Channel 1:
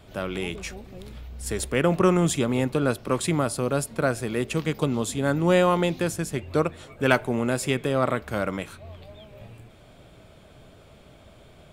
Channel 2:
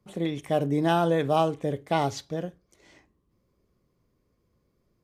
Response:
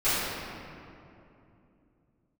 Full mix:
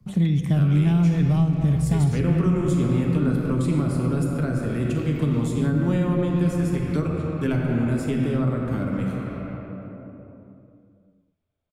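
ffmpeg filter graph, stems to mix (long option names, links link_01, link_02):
-filter_complex "[0:a]agate=range=-41dB:threshold=-38dB:ratio=16:detection=peak,adynamicequalizer=threshold=0.0112:dfrequency=1600:dqfactor=0.7:tfrequency=1600:tqfactor=0.7:attack=5:release=100:ratio=0.375:range=2.5:mode=cutabove:tftype=highshelf,adelay=400,volume=2dB,asplit=2[link_01][link_02];[link_02]volume=-12.5dB[link_03];[1:a]acontrast=62,lowshelf=frequency=260:width_type=q:width=1.5:gain=12.5,volume=-3dB,asplit=2[link_04][link_05];[link_05]volume=-23dB[link_06];[2:a]atrim=start_sample=2205[link_07];[link_03][link_06]amix=inputs=2:normalize=0[link_08];[link_08][link_07]afir=irnorm=-1:irlink=0[link_09];[link_01][link_04][link_09]amix=inputs=3:normalize=0,acrossover=split=300|930[link_10][link_11][link_12];[link_10]acompressor=threshold=-17dB:ratio=4[link_13];[link_11]acompressor=threshold=-43dB:ratio=4[link_14];[link_12]acompressor=threshold=-40dB:ratio=4[link_15];[link_13][link_14][link_15]amix=inputs=3:normalize=0"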